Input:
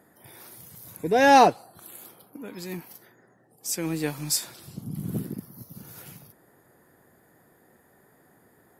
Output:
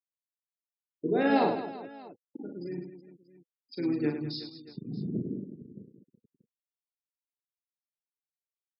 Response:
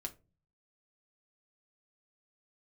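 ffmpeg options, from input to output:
-filter_complex "[0:a]asplit=2[s0][s1];[s1]asetrate=35002,aresample=44100,atempo=1.25992,volume=0.355[s2];[s0][s2]amix=inputs=2:normalize=0,aresample=11025,aresample=44100,acrusher=bits=5:mix=0:aa=0.5,lowshelf=f=510:t=q:w=1.5:g=6.5,alimiter=limit=0.355:level=0:latency=1:release=27,afftfilt=real='re*gte(hypot(re,im),0.0282)':imag='im*gte(hypot(re,im),0.0282)':win_size=1024:overlap=0.75,highpass=190,bandreject=f=500:w=15,aecho=1:1:40|104|206.4|370.2|632.4:0.631|0.398|0.251|0.158|0.1,volume=0.376"

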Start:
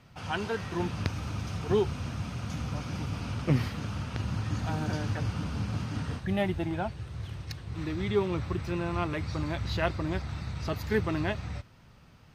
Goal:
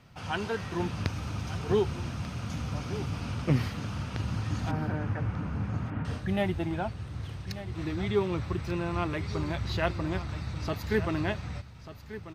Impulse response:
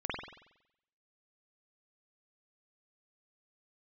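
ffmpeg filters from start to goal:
-filter_complex "[0:a]asettb=1/sr,asplit=3[s0][s1][s2];[s0]atrim=end=4.714[s3];[s1]atrim=start=4.71:end=6.05,asetpts=PTS-STARTPTS,afade=t=in:d=0.004:c=qsin,afade=t=out:st=1.336:d=0.004:c=qsin,lowpass=f=2200:w=0.5412,lowpass=f=2200:w=1.3066[s4];[s2]atrim=start=6.046[s5];[s3][s4]acrossfade=d=0.004:c1=hsin:c2=qsin[s6];[s6][s5]acrossfade=d=0.004:c1=qsin:c2=hsin,aecho=1:1:1190:0.211"

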